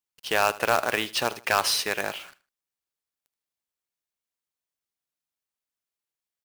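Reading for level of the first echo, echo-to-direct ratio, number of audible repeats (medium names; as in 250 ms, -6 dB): -19.0 dB, -18.5 dB, 2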